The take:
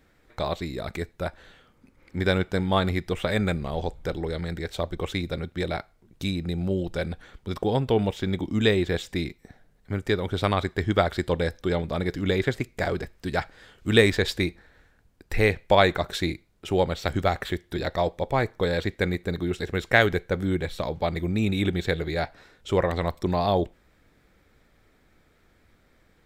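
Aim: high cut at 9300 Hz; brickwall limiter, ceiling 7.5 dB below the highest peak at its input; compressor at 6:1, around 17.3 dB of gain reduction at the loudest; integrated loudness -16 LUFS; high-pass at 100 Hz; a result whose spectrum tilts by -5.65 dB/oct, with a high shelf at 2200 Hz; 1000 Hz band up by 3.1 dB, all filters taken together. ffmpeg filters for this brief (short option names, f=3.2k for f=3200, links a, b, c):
-af "highpass=100,lowpass=9.3k,equalizer=f=1k:t=o:g=6,highshelf=f=2.2k:g=-8.5,acompressor=threshold=-31dB:ratio=6,volume=21.5dB,alimiter=limit=-1.5dB:level=0:latency=1"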